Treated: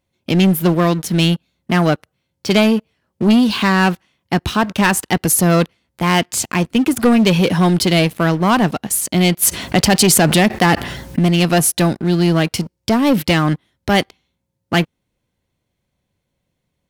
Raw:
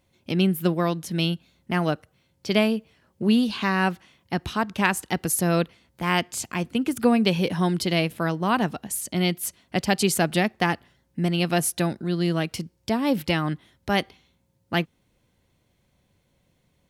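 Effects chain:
leveller curve on the samples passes 3
0:09.42–0:11.19: envelope flattener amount 70%

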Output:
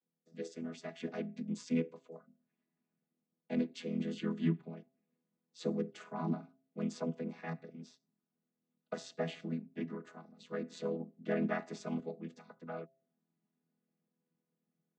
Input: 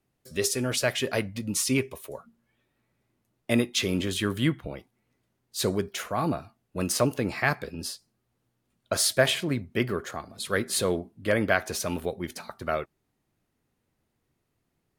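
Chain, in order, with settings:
channel vocoder with a chord as carrier major triad, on E3
sample-and-hold tremolo 1 Hz
hum removal 133.2 Hz, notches 5
level −6.5 dB

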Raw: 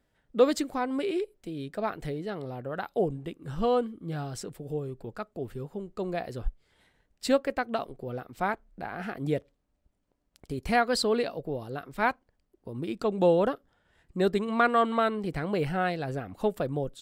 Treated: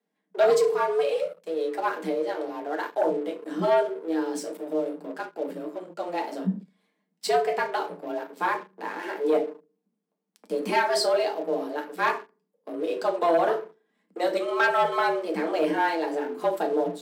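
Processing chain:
feedback delay network reverb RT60 0.35 s, low-frequency decay 1.5×, high-frequency decay 0.75×, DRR 0.5 dB
leveller curve on the samples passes 2
frequency shifter +160 Hz
level −7 dB

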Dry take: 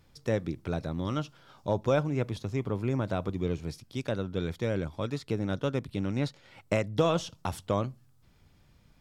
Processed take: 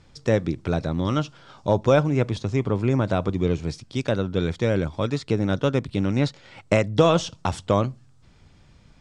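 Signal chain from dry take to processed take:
Butterworth low-pass 8,800 Hz 36 dB per octave
level +8 dB

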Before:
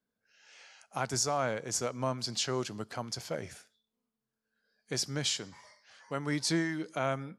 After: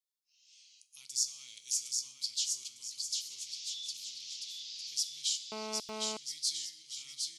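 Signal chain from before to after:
0:03.30–0:04.94: linear delta modulator 32 kbit/s, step −34 dBFS
inverse Chebyshev high-pass filter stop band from 1,700 Hz, stop band 40 dB
bouncing-ball delay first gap 760 ms, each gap 0.7×, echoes 5
dense smooth reverb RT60 0.77 s, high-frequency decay 0.8×, DRR 11 dB
0:01.21–0:02.00: multiband upward and downward compressor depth 70%
0:05.52–0:06.17: phone interference −41 dBFS

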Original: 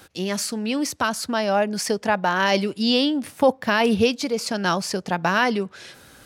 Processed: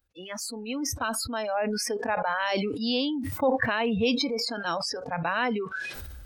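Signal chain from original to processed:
noise reduction from a noise print of the clip's start 28 dB
level that may fall only so fast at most 23 dB per second
level −7.5 dB

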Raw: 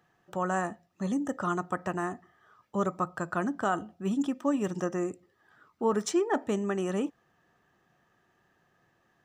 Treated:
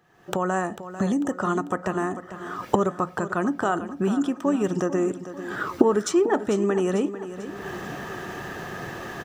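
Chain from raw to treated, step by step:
camcorder AGC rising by 46 dB per second
parametric band 400 Hz +4 dB 0.55 octaves
repeating echo 445 ms, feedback 50%, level −12.5 dB
level +3.5 dB

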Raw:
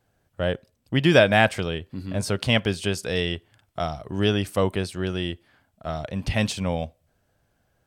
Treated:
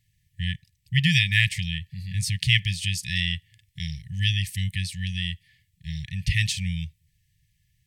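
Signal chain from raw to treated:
linear-phase brick-wall band-stop 180–1,700 Hz
level +3 dB

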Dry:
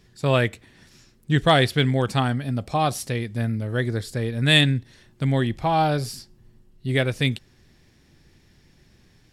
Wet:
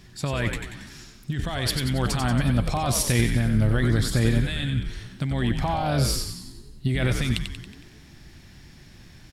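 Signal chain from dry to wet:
parametric band 460 Hz −8 dB 0.48 octaves
compressor whose output falls as the input rises −27 dBFS, ratio −1
on a send: echo with shifted repeats 92 ms, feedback 54%, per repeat −79 Hz, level −6 dB
on the sum: level +3 dB

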